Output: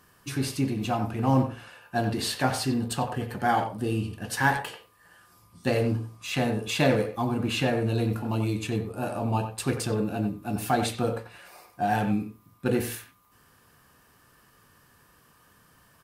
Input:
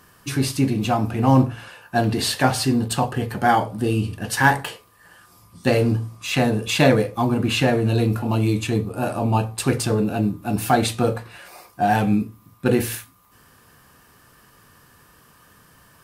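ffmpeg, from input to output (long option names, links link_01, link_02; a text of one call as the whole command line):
ffmpeg -i in.wav -filter_complex "[0:a]asplit=2[link_01][link_02];[link_02]adelay=90,highpass=300,lowpass=3400,asoftclip=type=hard:threshold=-11dB,volume=-8dB[link_03];[link_01][link_03]amix=inputs=2:normalize=0,volume=-7dB" out.wav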